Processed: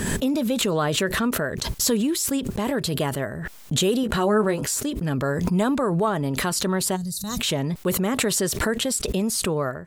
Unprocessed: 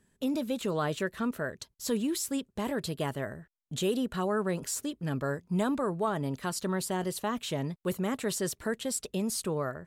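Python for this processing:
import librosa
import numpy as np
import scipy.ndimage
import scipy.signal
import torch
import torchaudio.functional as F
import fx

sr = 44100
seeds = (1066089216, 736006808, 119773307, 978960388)

y = fx.doubler(x, sr, ms=14.0, db=-6.0, at=(4.02, 4.8))
y = fx.spec_box(y, sr, start_s=6.96, length_s=0.43, low_hz=210.0, high_hz=3600.0, gain_db=-24)
y = fx.pre_swell(y, sr, db_per_s=26.0)
y = F.gain(torch.from_numpy(y), 7.0).numpy()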